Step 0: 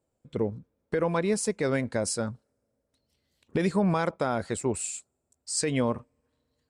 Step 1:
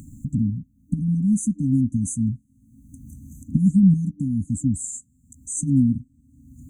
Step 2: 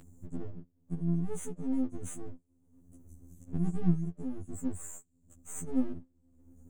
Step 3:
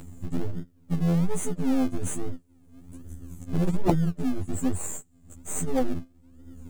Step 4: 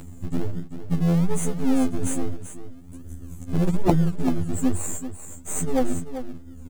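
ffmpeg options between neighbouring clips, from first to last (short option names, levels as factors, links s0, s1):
-af "acompressor=mode=upward:threshold=0.0447:ratio=2.5,afftfilt=real='re*(1-between(b*sr/4096,300,6000))':imag='im*(1-between(b*sr/4096,300,6000))':win_size=4096:overlap=0.75,tiltshelf=f=1200:g=5,volume=2.11"
-filter_complex "[0:a]aeval=exprs='if(lt(val(0),0),0.251*val(0),val(0))':c=same,acrossover=split=5000[s0][s1];[s0]acompressor=mode=upward:threshold=0.00631:ratio=2.5[s2];[s2][s1]amix=inputs=2:normalize=0,afftfilt=real='re*2*eq(mod(b,4),0)':imag='im*2*eq(mod(b,4),0)':win_size=2048:overlap=0.75,volume=0.398"
-filter_complex "[0:a]aeval=exprs='0.211*(cos(1*acos(clip(val(0)/0.211,-1,1)))-cos(1*PI/2))+0.0944*(cos(3*acos(clip(val(0)/0.211,-1,1)))-cos(3*PI/2))+0.0335*(cos(4*acos(clip(val(0)/0.211,-1,1)))-cos(4*PI/2))+0.0841*(cos(5*acos(clip(val(0)/0.211,-1,1)))-cos(5*PI/2))':c=same,asplit=2[s0][s1];[s1]acrusher=samples=37:mix=1:aa=0.000001:lfo=1:lforange=22.2:lforate=1.2,volume=0.299[s2];[s0][s2]amix=inputs=2:normalize=0,volume=2"
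-af "aecho=1:1:388:0.299,volume=1.41"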